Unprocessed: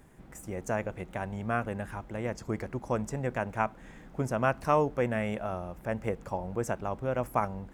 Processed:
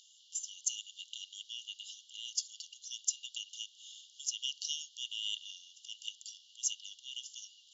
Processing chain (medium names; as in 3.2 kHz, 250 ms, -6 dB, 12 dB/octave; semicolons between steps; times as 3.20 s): frequency shift +94 Hz; brick-wall FIR band-pass 2.8–7.4 kHz; trim +15.5 dB